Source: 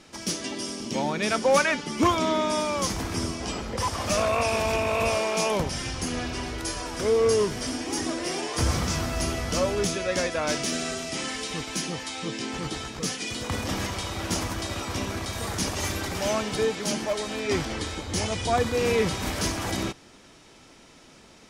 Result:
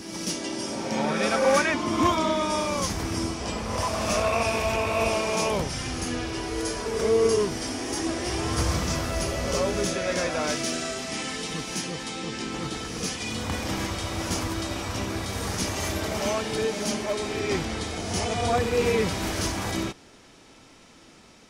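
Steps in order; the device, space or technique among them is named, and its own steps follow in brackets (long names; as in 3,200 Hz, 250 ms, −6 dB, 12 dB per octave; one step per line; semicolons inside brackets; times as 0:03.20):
reverse reverb (reversed playback; convolution reverb RT60 2.2 s, pre-delay 28 ms, DRR 3.5 dB; reversed playback)
level −1.5 dB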